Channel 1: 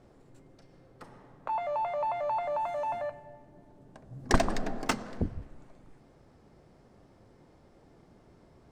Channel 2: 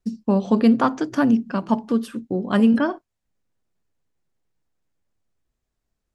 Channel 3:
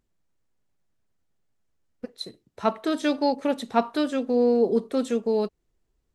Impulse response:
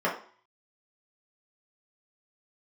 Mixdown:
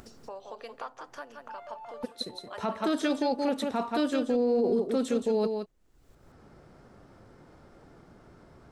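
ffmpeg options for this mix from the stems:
-filter_complex "[0:a]equalizer=f=1400:w=3.4:g=8,volume=0.126[s0];[1:a]highpass=f=510:w=0.5412,highpass=f=510:w=1.3066,volume=0.112,asplit=2[s1][s2];[s2]volume=0.376[s3];[2:a]volume=0.944,asplit=3[s4][s5][s6];[s5]volume=0.398[s7];[s6]apad=whole_len=384322[s8];[s0][s8]sidechaincompress=threshold=0.0158:ratio=8:attack=16:release=909[s9];[s3][s7]amix=inputs=2:normalize=0,aecho=0:1:172:1[s10];[s9][s1][s4][s10]amix=inputs=4:normalize=0,acompressor=mode=upward:threshold=0.0178:ratio=2.5,alimiter=limit=0.119:level=0:latency=1:release=15"

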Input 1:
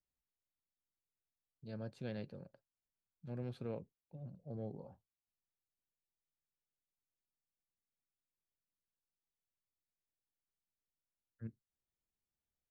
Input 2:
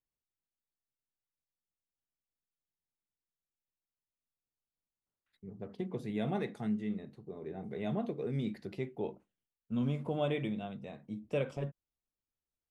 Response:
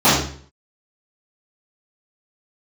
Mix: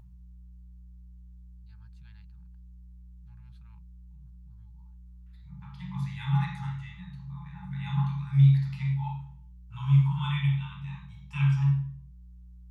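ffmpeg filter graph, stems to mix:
-filter_complex "[0:a]equalizer=f=240:t=o:w=0.3:g=-12,volume=0.335[s0];[1:a]aeval=exprs='val(0)+0.00141*(sin(2*PI*60*n/s)+sin(2*PI*2*60*n/s)/2+sin(2*PI*3*60*n/s)/3+sin(2*PI*4*60*n/s)/4+sin(2*PI*5*60*n/s)/5)':c=same,volume=1.26,asplit=2[s1][s2];[s2]volume=0.0794[s3];[2:a]atrim=start_sample=2205[s4];[s3][s4]afir=irnorm=-1:irlink=0[s5];[s0][s1][s5]amix=inputs=3:normalize=0,afftfilt=real='re*(1-between(b*sr/4096,190,820))':imag='im*(1-between(b*sr/4096,190,820))':win_size=4096:overlap=0.75,acompressor=mode=upward:threshold=0.00501:ratio=2.5"

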